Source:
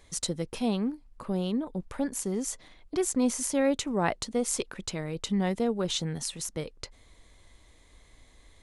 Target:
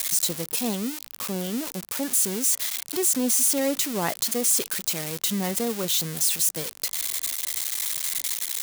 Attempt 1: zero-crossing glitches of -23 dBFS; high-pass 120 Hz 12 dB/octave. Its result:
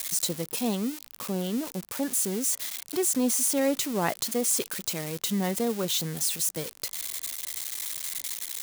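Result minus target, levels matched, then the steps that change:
zero-crossing glitches: distortion -6 dB
change: zero-crossing glitches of -17 dBFS

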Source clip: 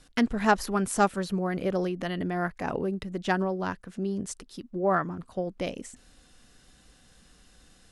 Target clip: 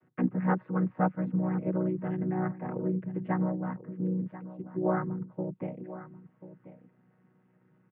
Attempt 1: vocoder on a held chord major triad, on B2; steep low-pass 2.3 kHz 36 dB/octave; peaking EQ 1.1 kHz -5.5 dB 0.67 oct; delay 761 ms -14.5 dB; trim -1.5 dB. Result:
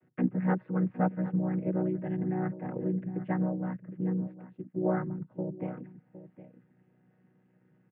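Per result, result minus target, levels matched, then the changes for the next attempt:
echo 276 ms early; 1 kHz band -3.0 dB
change: delay 1037 ms -14.5 dB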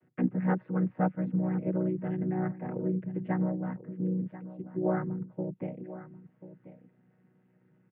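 1 kHz band -3.0 dB
change: peaking EQ 1.1 kHz +2 dB 0.67 oct

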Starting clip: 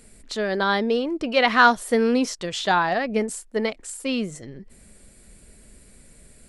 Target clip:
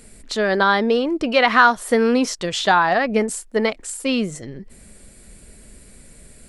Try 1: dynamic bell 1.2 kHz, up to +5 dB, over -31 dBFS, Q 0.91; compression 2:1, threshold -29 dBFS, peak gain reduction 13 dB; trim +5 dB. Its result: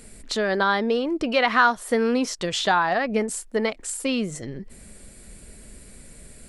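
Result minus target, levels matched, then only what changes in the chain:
compression: peak gain reduction +4.5 dB
change: compression 2:1, threshold -19.5 dBFS, peak gain reduction 8 dB

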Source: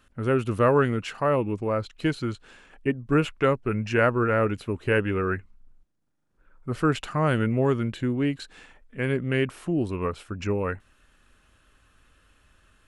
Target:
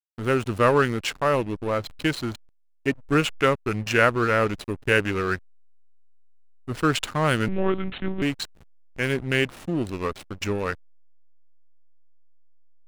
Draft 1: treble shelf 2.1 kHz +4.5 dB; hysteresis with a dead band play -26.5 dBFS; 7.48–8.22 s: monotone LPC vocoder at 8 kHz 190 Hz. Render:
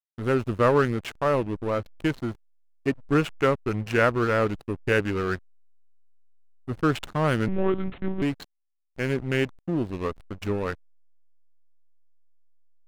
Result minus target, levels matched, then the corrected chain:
4 kHz band -6.0 dB
treble shelf 2.1 kHz +14 dB; hysteresis with a dead band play -26.5 dBFS; 7.48–8.22 s: monotone LPC vocoder at 8 kHz 190 Hz

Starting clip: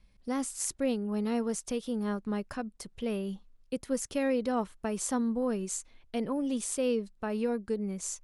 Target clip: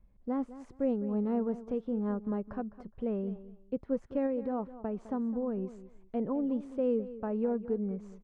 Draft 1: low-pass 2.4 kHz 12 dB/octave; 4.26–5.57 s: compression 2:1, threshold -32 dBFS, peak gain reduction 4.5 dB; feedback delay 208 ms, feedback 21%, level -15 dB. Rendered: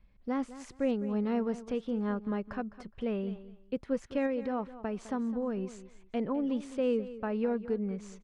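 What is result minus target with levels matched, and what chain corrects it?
2 kHz band +10.0 dB
low-pass 940 Hz 12 dB/octave; 4.26–5.57 s: compression 2:1, threshold -32 dBFS, peak gain reduction 4.5 dB; feedback delay 208 ms, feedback 21%, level -15 dB

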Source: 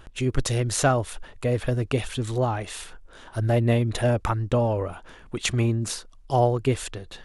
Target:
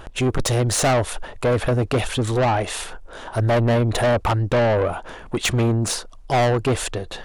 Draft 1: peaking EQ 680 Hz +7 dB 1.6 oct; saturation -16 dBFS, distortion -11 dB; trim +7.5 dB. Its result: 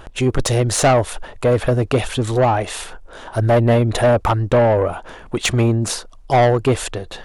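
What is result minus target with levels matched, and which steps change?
saturation: distortion -5 dB
change: saturation -22.5 dBFS, distortion -6 dB

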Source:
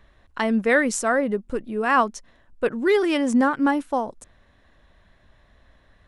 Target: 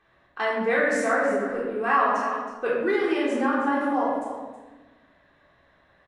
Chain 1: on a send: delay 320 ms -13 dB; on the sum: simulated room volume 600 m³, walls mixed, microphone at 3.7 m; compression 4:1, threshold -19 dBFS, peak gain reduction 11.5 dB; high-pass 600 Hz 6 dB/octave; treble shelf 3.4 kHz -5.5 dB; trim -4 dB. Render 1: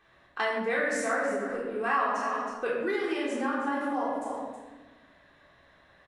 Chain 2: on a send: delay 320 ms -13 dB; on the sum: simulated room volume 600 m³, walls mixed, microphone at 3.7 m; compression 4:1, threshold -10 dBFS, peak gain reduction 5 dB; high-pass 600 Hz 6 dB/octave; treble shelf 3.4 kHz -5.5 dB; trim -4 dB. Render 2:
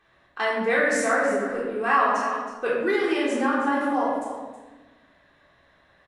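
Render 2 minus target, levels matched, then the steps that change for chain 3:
8 kHz band +5.5 dB
change: treble shelf 3.4 kHz -13 dB

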